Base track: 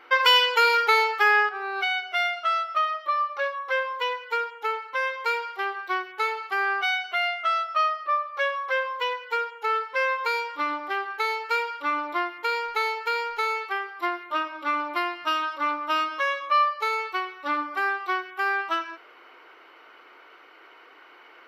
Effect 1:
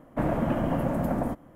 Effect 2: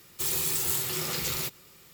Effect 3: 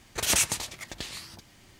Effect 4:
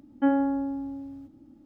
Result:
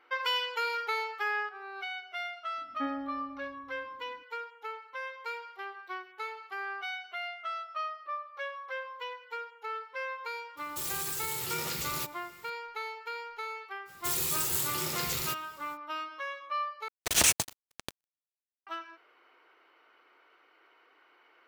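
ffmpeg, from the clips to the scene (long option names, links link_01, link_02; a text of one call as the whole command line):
ffmpeg -i bed.wav -i cue0.wav -i cue1.wav -i cue2.wav -i cue3.wav -filter_complex "[2:a]asplit=2[link_01][link_02];[0:a]volume=-12.5dB[link_03];[4:a]lowpass=frequency=2200:width_type=q:width=7.1[link_04];[link_01]alimiter=limit=-22dB:level=0:latency=1:release=65[link_05];[3:a]acrusher=bits=3:mix=0:aa=0.5[link_06];[link_03]asplit=2[link_07][link_08];[link_07]atrim=end=16.884[link_09];[link_06]atrim=end=1.79[link_10];[link_08]atrim=start=18.666[link_11];[link_04]atrim=end=1.65,asetpts=PTS-STARTPTS,volume=-13.5dB,afade=type=in:duration=0.004:curve=hsin,afade=type=out:start_time=1.646:duration=0.004:curve=hsin,adelay=2580[link_12];[link_05]atrim=end=1.93,asetpts=PTS-STARTPTS,volume=-2.5dB,afade=type=in:duration=0.004:curve=hsin,afade=type=out:start_time=1.926:duration=0.004:curve=hsin,adelay=10570[link_13];[link_02]atrim=end=1.93,asetpts=PTS-STARTPTS,volume=-2.5dB,afade=type=in:duration=0.05,afade=type=out:start_time=1.88:duration=0.05,adelay=13850[link_14];[link_09][link_10]acrossfade=duration=0.004:curve1=hsin:curve2=hsin[link_15];[link_15][link_11]acrossfade=duration=0.004:curve1=hsin:curve2=hsin[link_16];[link_16][link_12][link_13][link_14]amix=inputs=4:normalize=0" out.wav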